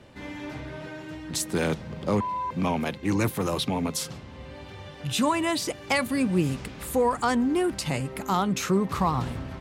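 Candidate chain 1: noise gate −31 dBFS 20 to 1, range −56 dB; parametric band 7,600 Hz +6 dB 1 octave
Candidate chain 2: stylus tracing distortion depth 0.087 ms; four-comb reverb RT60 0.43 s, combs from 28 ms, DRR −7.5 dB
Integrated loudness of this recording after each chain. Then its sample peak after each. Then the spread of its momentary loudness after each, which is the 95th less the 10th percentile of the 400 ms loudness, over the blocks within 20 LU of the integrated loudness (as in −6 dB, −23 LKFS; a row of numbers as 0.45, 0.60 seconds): −26.5, −19.0 LKFS; −10.0, −2.0 dBFS; 7, 15 LU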